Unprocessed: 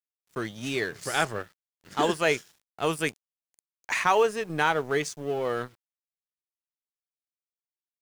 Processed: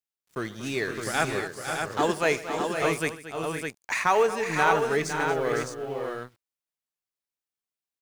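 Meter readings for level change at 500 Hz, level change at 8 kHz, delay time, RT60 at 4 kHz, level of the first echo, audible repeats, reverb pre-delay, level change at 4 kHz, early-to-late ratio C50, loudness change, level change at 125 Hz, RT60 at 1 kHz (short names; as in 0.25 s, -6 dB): +2.0 dB, +2.0 dB, 75 ms, none, -19.0 dB, 6, none, -1.0 dB, none, +0.5 dB, +2.0 dB, none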